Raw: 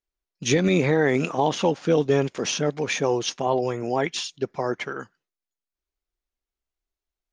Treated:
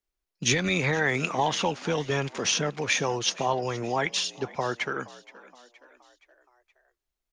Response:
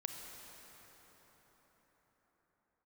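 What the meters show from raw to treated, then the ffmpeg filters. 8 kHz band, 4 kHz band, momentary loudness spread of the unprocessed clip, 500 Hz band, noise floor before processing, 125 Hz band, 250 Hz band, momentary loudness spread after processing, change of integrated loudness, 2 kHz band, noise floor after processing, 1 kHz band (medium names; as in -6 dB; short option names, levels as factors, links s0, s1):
+2.0 dB, +2.0 dB, 9 LU, -7.0 dB, under -85 dBFS, -4.0 dB, -7.5 dB, 7 LU, -3.0 dB, +2.0 dB, under -85 dBFS, -1.0 dB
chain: -filter_complex "[0:a]acrossover=split=120|810|3000[s0][s1][s2][s3];[s1]acompressor=threshold=0.0251:ratio=6[s4];[s0][s4][s2][s3]amix=inputs=4:normalize=0,asplit=5[s5][s6][s7][s8][s9];[s6]adelay=471,afreqshift=60,volume=0.1[s10];[s7]adelay=942,afreqshift=120,volume=0.0531[s11];[s8]adelay=1413,afreqshift=180,volume=0.0282[s12];[s9]adelay=1884,afreqshift=240,volume=0.015[s13];[s5][s10][s11][s12][s13]amix=inputs=5:normalize=0,volume=1.26"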